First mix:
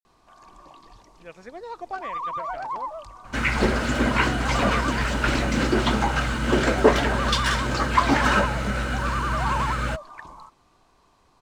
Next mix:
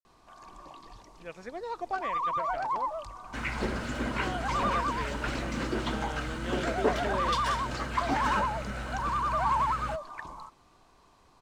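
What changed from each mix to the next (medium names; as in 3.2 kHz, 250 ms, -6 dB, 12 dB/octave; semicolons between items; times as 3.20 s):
second sound -10.5 dB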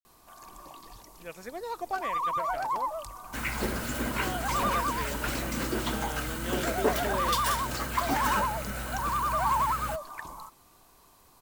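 master: remove distance through air 100 m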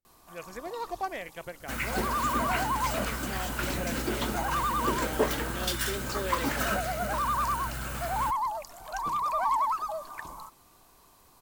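speech: entry -0.90 s; second sound: entry -1.65 s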